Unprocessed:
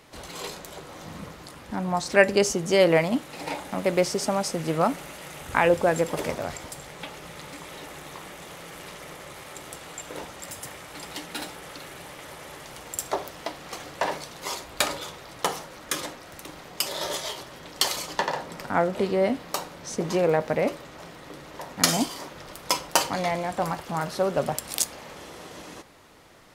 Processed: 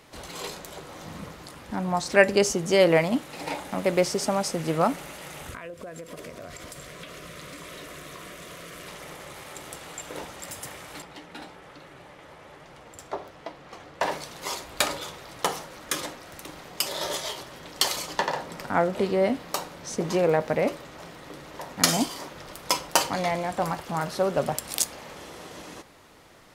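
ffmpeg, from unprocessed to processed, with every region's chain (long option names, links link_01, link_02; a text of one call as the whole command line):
ffmpeg -i in.wav -filter_complex "[0:a]asettb=1/sr,asplit=3[link_01][link_02][link_03];[link_01]atrim=end=5.504[link_04];[link_02]atrim=start=5.5:end=8.88,asetpts=PTS-STARTPTS,afade=type=in:duration=0.004:curve=qsin,afade=type=out:start_time=3.376:duration=0.004:curve=qsin,asuperstop=centerf=840:order=8:qfactor=4.3,acompressor=threshold=-36dB:ratio=10:attack=3.2:release=140:knee=1:detection=peak[link_05];[link_03]atrim=start=8.876[link_06];[link_04][link_05]acrossfade=duration=0.004:curve1=hsin:curve2=qsin[link_07];[link_07][link_06]acrossfade=duration=0.004:curve1=qsin:curve2=hsin,asettb=1/sr,asplit=3[link_08][link_09][link_10];[link_08]atrim=end=11.024[link_11];[link_09]atrim=start=11.02:end=14.01,asetpts=PTS-STARTPTS,afade=type=in:duration=0.004:curve=qsin,afade=type=out:start_time=2.986:duration=0.004:curve=qsin,aemphasis=mode=reproduction:type=75kf,flanger=delay=5.3:depth=7.8:regen=71:speed=1.2:shape=triangular[link_12];[link_10]atrim=start=14.006[link_13];[link_11][link_12]acrossfade=duration=0.004:curve1=hsin:curve2=qsin[link_14];[link_14][link_13]acrossfade=duration=0.004:curve1=qsin:curve2=hsin" out.wav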